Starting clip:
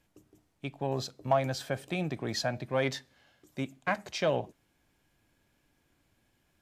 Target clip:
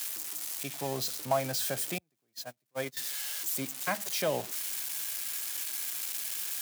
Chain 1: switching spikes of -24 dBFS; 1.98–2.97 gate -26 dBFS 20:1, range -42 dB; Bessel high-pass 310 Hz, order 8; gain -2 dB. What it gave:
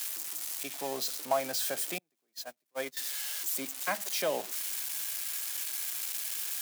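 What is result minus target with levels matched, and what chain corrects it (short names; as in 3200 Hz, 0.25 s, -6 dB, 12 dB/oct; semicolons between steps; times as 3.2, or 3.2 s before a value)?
125 Hz band -13.5 dB
switching spikes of -24 dBFS; 1.98–2.97 gate -26 dBFS 20:1, range -42 dB; Bessel high-pass 140 Hz, order 8; gain -2 dB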